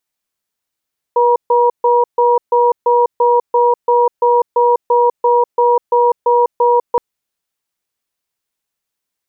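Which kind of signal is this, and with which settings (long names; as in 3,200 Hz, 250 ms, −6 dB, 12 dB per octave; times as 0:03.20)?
tone pair in a cadence 483 Hz, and 956 Hz, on 0.20 s, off 0.14 s, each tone −11 dBFS 5.82 s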